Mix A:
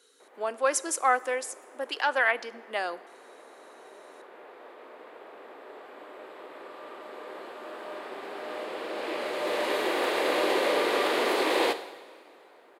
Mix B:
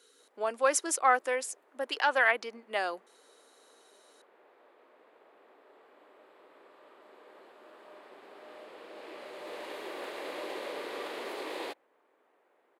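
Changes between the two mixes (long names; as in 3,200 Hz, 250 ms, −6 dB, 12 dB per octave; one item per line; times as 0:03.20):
background −11.0 dB
reverb: off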